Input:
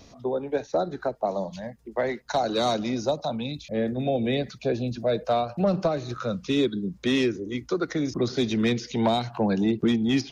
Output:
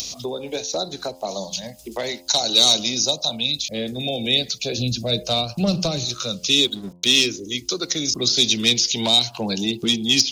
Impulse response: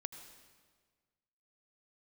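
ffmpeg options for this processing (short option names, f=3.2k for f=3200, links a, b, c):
-filter_complex "[0:a]aexciter=amount=11.8:drive=4:freq=2.6k,asoftclip=type=hard:threshold=-3dB,asettb=1/sr,asplit=3[a][b][c];[a]atrim=end=4.784[d];[b]atrim=start=4.78:end=6.05,asetpts=PTS-STARTPTS,afade=t=in:d=0.004:c=qsin,afade=t=out:st=1.266:d=0.004:c=qsin,bass=f=250:g=10,treble=f=4k:g=0[e];[c]atrim=start=6.046[f];[d][e]acrossfade=d=0.004:c1=hsin:c2=qsin[g];[g][f]acrossfade=d=0.004:c1=qsin:c2=hsin,asettb=1/sr,asplit=3[h][i][j];[h]atrim=end=6.644[k];[i]atrim=start=6.64:end=7.26,asetpts=PTS-STARTPTS,afade=t=in:d=0.004:c=qsin,afade=t=out:st=0.616:d=0.004:c=qsin,aeval=exprs='sgn(val(0))*max(abs(val(0))-0.0112,0)':c=same[l];[j]atrim=start=7.256[m];[k][l]acrossfade=d=0.004:c1=hsin:c2=qsin[n];[n][m]acrossfade=d=0.004:c1=qsin:c2=hsin,acompressor=mode=upward:threshold=-21dB:ratio=2.5,bandreject=f=87.79:t=h:w=4,bandreject=f=175.58:t=h:w=4,bandreject=f=263.37:t=h:w=4,bandreject=f=351.16:t=h:w=4,bandreject=f=438.95:t=h:w=4,bandreject=f=526.74:t=h:w=4,bandreject=f=614.53:t=h:w=4,bandreject=f=702.32:t=h:w=4,bandreject=f=790.11:t=h:w=4,bandreject=f=877.9:t=h:w=4,bandreject=f=965.69:t=h:w=4,bandreject=f=1.05348k:t=h:w=4,volume=-2dB"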